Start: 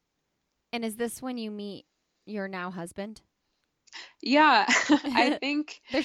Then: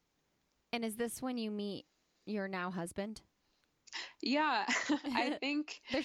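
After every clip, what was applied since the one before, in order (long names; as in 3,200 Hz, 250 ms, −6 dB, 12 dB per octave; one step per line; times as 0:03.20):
downward compressor 2.5 to 1, threshold −36 dBFS, peak gain reduction 13.5 dB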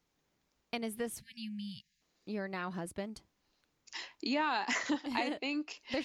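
time-frequency box erased 0:01.20–0:02.01, 220–1,600 Hz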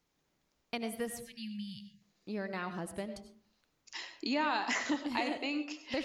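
comb and all-pass reverb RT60 0.46 s, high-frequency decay 0.35×, pre-delay 55 ms, DRR 9.5 dB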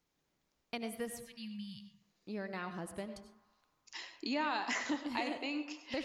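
feedback echo with a band-pass in the loop 100 ms, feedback 78%, band-pass 1,100 Hz, level −17 dB
level −3 dB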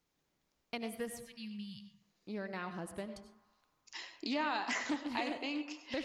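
highs frequency-modulated by the lows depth 0.12 ms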